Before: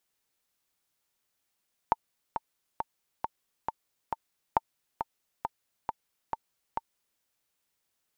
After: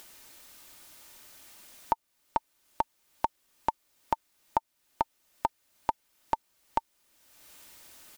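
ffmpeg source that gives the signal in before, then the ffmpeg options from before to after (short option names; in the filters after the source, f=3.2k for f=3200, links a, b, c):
-f lavfi -i "aevalsrc='pow(10,(-9-8*gte(mod(t,6*60/136),60/136))/20)*sin(2*PI*901*mod(t,60/136))*exp(-6.91*mod(t,60/136)/0.03)':d=5.29:s=44100"
-filter_complex "[0:a]asplit=2[a][b];[b]acompressor=mode=upward:threshold=-29dB:ratio=2.5,volume=-2dB[c];[a][c]amix=inputs=2:normalize=0,aecho=1:1:3.3:0.32,alimiter=limit=-11dB:level=0:latency=1:release=262"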